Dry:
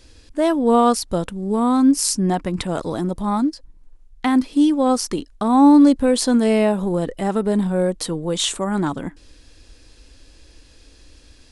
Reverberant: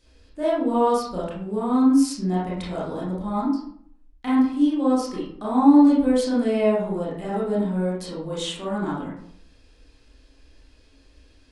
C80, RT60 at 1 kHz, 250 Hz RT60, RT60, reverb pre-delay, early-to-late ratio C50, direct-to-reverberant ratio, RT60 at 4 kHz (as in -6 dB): 6.5 dB, 0.65 s, 0.70 s, 0.65 s, 23 ms, 1.0 dB, -8.0 dB, 0.40 s